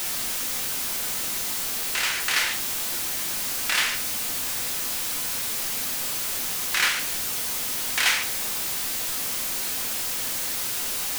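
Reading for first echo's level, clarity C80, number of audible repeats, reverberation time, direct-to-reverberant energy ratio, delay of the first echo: no echo audible, 16.0 dB, no echo audible, 0.60 s, 4.5 dB, no echo audible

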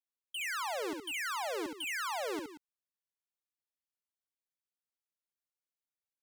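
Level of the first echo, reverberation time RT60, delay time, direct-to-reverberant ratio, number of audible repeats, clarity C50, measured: −4.5 dB, no reverb audible, 68 ms, no reverb audible, 2, no reverb audible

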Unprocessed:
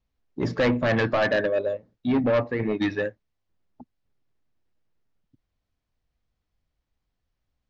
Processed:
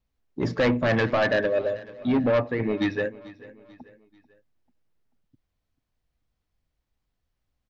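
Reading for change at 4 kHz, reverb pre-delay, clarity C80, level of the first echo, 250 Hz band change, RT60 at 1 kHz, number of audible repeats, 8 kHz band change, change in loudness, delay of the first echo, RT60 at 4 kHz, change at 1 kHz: 0.0 dB, no reverb audible, no reverb audible, −19.5 dB, 0.0 dB, no reverb audible, 3, can't be measured, 0.0 dB, 440 ms, no reverb audible, 0.0 dB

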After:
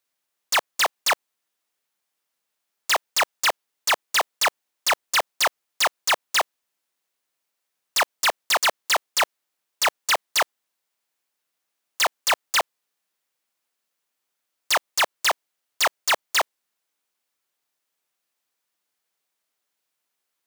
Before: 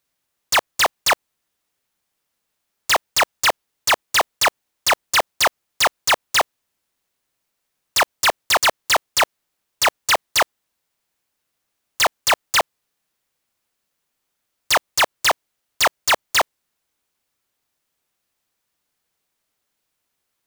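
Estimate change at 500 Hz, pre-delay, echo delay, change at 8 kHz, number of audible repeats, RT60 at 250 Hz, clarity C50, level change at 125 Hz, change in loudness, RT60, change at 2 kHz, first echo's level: −5.0 dB, no reverb audible, no echo audible, −3.5 dB, no echo audible, no reverb audible, no reverb audible, below −10 dB, −4.0 dB, no reverb audible, −3.5 dB, no echo audible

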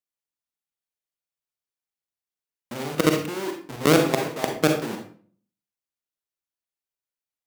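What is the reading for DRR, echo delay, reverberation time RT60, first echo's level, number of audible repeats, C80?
3.0 dB, no echo audible, 0.50 s, no echo audible, no echo audible, 10.5 dB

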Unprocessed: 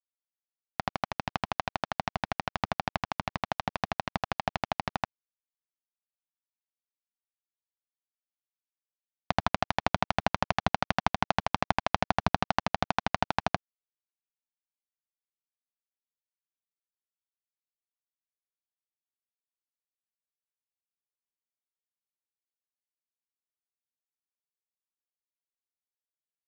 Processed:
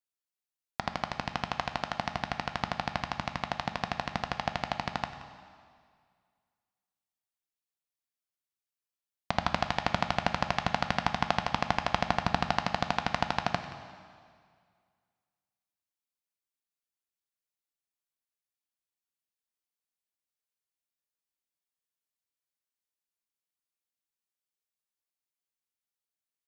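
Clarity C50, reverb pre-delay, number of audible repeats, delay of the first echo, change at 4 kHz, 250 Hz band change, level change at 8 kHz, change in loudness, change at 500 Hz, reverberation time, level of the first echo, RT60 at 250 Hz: 9.0 dB, 5 ms, 1, 176 ms, +1.0 dB, −1.0 dB, +1.0 dB, −0.5 dB, −1.5 dB, 2.0 s, −17.5 dB, 2.0 s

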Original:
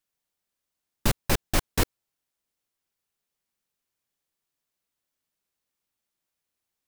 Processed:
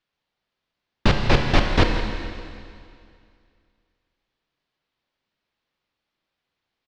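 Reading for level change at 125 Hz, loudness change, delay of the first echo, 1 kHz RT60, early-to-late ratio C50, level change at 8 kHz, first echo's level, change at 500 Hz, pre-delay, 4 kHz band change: +9.0 dB, +6.0 dB, 171 ms, 2.3 s, 4.0 dB, −9.0 dB, −13.5 dB, +9.0 dB, 29 ms, +6.5 dB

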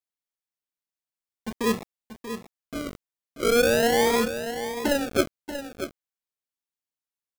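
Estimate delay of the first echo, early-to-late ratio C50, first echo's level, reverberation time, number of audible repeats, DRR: 635 ms, no reverb audible, −10.0 dB, no reverb audible, 1, no reverb audible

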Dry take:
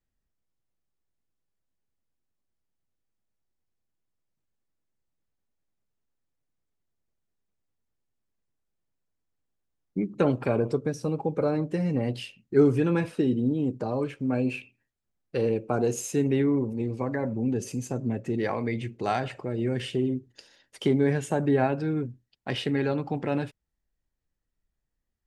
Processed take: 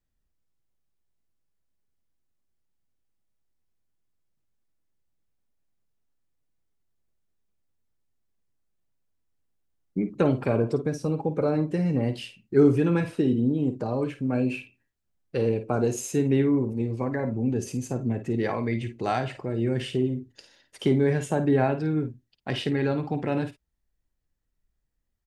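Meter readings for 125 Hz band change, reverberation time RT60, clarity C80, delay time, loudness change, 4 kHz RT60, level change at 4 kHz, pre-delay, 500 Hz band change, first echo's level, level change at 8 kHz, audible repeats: +2.5 dB, no reverb audible, no reverb audible, 52 ms, +1.5 dB, no reverb audible, +0.5 dB, no reverb audible, +1.0 dB, −10.5 dB, +0.5 dB, 1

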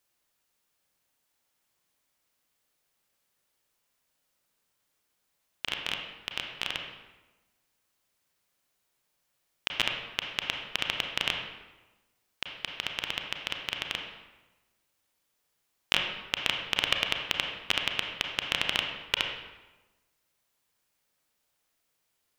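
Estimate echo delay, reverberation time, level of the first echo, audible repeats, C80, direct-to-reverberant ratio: no echo audible, 1.1 s, no echo audible, no echo audible, 6.0 dB, 2.0 dB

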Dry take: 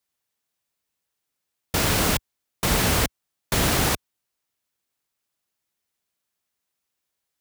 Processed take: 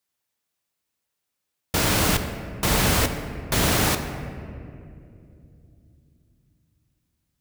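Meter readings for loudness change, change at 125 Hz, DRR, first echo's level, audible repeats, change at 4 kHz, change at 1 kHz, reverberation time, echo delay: 0.0 dB, +1.5 dB, 7.0 dB, no echo audible, no echo audible, +0.5 dB, +1.0 dB, 2.6 s, no echo audible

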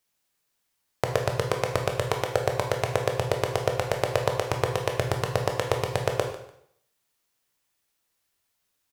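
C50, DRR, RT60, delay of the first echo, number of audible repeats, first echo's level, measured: 6.5 dB, 2.5 dB, 0.70 s, 147 ms, 2, −16.5 dB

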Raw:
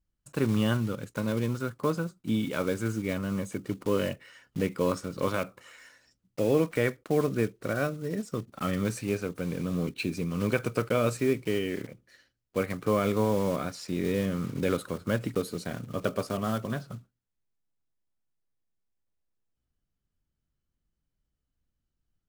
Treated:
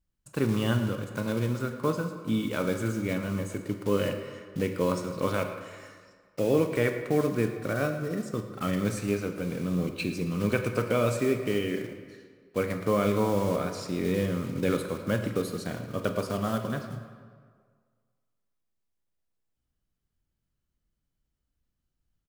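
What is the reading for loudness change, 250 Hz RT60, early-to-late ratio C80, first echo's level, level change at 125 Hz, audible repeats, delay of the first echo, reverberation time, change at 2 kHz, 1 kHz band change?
+1.0 dB, 1.7 s, 8.5 dB, −16.0 dB, +1.0 dB, 1, 111 ms, 1.8 s, +1.0 dB, +1.0 dB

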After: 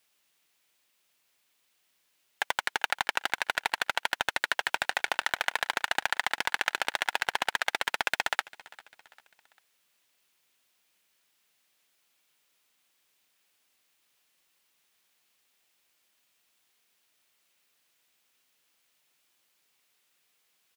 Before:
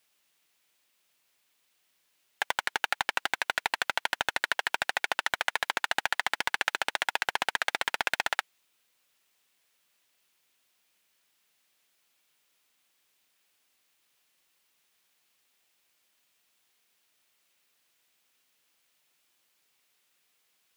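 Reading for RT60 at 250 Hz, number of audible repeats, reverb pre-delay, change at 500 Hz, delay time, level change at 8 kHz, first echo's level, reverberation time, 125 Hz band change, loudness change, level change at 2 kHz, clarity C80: no reverb audible, 2, no reverb audible, 0.0 dB, 397 ms, 0.0 dB, −21.5 dB, no reverb audible, 0.0 dB, 0.0 dB, 0.0 dB, no reverb audible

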